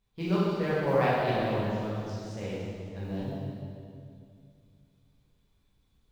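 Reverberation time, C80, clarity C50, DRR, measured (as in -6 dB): 2.3 s, -1.5 dB, -3.5 dB, -9.5 dB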